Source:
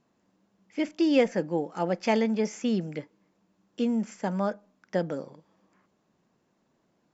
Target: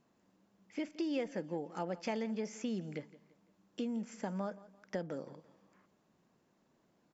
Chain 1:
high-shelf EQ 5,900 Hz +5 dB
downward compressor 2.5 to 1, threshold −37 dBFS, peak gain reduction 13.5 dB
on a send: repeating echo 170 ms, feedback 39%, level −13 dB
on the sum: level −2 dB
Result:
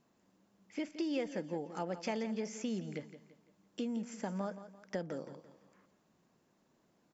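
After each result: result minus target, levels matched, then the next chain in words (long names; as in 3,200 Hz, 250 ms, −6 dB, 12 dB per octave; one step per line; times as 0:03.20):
echo-to-direct +6 dB; 8,000 Hz band +2.5 dB
high-shelf EQ 5,900 Hz +5 dB
downward compressor 2.5 to 1, threshold −37 dBFS, peak gain reduction 13.5 dB
on a send: repeating echo 170 ms, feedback 39%, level −19 dB
on the sum: level −2 dB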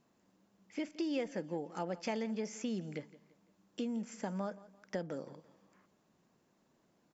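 8,000 Hz band +2.5 dB
downward compressor 2.5 to 1, threshold −37 dBFS, peak gain reduction 13.5 dB
on a send: repeating echo 170 ms, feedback 39%, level −19 dB
on the sum: level −2 dB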